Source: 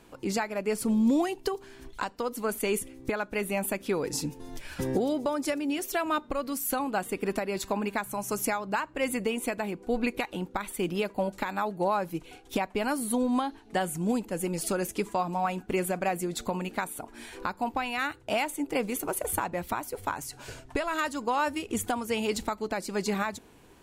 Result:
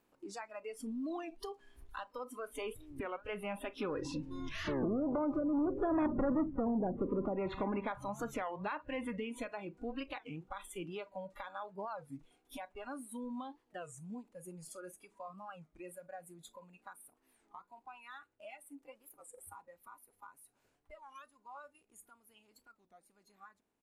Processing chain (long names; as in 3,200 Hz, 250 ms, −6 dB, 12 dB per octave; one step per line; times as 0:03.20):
compressor on every frequency bin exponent 0.6
source passing by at 0:06.14, 7 m/s, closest 2.4 metres
in parallel at +2 dB: downward compressor 6 to 1, threshold −48 dBFS, peak gain reduction 25 dB
on the sum: treble cut that deepens with the level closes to 540 Hz, closed at −27.5 dBFS
soft clipping −31 dBFS, distortion −10 dB
single-tap delay 127 ms −22.5 dB
noise reduction from a noise print of the clip's start 22 dB
wow of a warped record 33 1/3 rpm, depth 250 cents
level +3 dB